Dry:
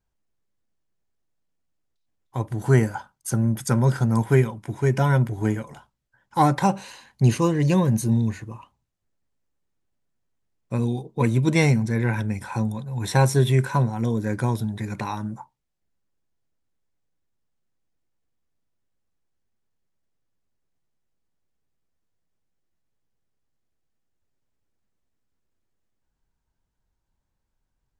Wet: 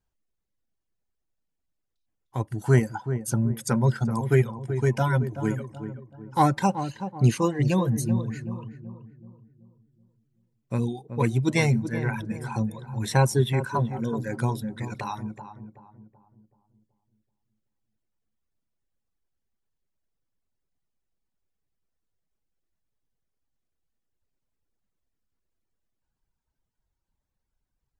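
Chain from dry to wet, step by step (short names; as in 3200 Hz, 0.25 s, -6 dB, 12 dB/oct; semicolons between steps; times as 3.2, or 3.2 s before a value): reverb removal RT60 1.9 s; on a send: darkening echo 0.379 s, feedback 44%, low-pass 980 Hz, level -9 dB; on the sum: gain -1.5 dB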